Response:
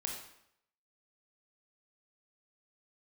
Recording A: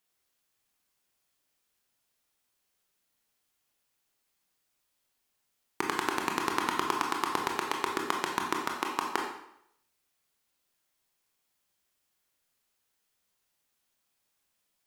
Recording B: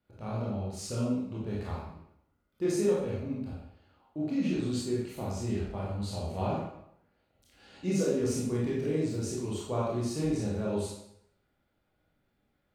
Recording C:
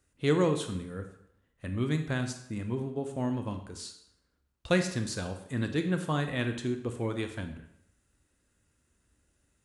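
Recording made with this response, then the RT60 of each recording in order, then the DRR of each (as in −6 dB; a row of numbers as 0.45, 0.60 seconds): A; 0.75, 0.75, 0.75 seconds; 0.0, −6.0, 6.5 decibels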